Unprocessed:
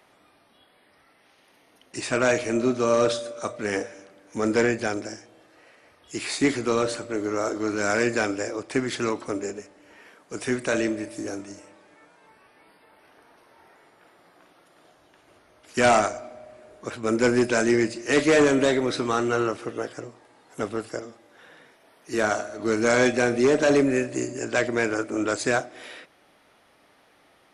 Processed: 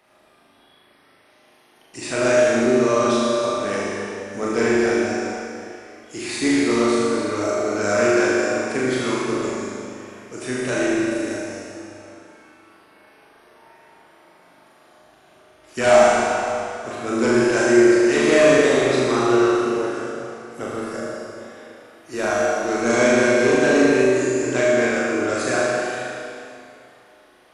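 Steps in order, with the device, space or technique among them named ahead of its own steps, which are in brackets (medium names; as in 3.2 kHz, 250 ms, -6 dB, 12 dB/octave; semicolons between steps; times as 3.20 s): tunnel (flutter echo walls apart 6.7 m, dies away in 0.86 s; reverberation RT60 2.7 s, pre-delay 22 ms, DRR -3 dB); trim -3 dB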